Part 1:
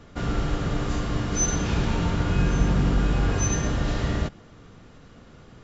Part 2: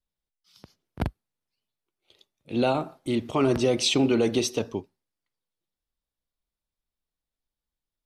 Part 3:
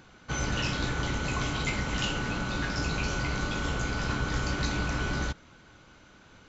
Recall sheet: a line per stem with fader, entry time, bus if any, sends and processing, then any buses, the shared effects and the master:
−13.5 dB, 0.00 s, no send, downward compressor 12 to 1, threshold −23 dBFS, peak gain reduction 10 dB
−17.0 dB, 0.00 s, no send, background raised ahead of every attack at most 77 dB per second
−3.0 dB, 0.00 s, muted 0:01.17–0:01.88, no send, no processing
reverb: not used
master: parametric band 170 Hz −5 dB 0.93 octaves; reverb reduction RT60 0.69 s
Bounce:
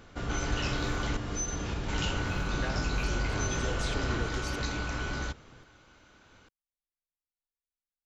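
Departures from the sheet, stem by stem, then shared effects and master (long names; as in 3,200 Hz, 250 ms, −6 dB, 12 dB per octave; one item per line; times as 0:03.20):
stem 1 −13.5 dB → −5.0 dB
master: missing reverb reduction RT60 0.69 s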